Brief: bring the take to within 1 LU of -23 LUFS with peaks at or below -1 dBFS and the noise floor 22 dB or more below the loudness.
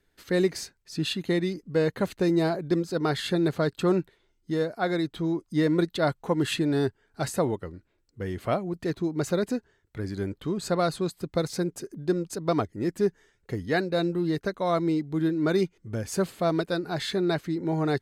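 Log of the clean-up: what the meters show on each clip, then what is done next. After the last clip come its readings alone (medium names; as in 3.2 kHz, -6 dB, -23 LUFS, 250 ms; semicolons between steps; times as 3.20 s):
loudness -28.0 LUFS; peak level -13.0 dBFS; loudness target -23.0 LUFS
-> trim +5 dB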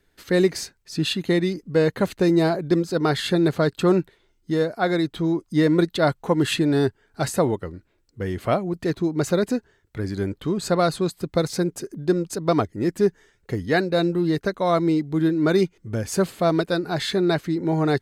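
loudness -23.0 LUFS; peak level -8.0 dBFS; noise floor -66 dBFS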